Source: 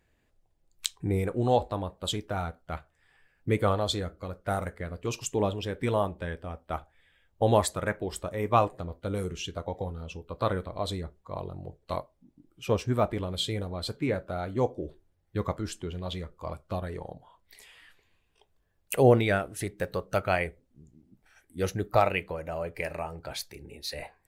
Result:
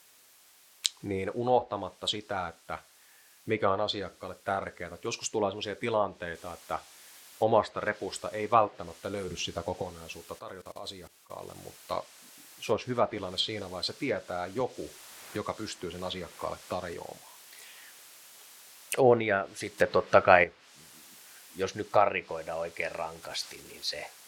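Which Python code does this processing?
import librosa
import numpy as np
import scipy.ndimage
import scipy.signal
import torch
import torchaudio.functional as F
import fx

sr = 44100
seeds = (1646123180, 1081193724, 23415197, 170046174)

y = fx.noise_floor_step(x, sr, seeds[0], at_s=6.35, before_db=-59, after_db=-52, tilt_db=0.0)
y = fx.low_shelf(y, sr, hz=300.0, db=9.5, at=(9.28, 9.82))
y = fx.level_steps(y, sr, step_db=20, at=(10.38, 11.53), fade=0.02)
y = fx.band_squash(y, sr, depth_pct=70, at=(14.6, 16.94))
y = fx.transient(y, sr, attack_db=-4, sustain_db=5, at=(23.22, 23.87), fade=0.02)
y = fx.edit(y, sr, fx.clip_gain(start_s=19.78, length_s=0.66, db=8.0), tone=tone)
y = fx.highpass(y, sr, hz=470.0, slope=6)
y = fx.env_lowpass_down(y, sr, base_hz=2200.0, full_db=-24.0)
y = fx.dynamic_eq(y, sr, hz=4800.0, q=1.9, threshold_db=-50.0, ratio=4.0, max_db=4)
y = F.gain(torch.from_numpy(y), 1.5).numpy()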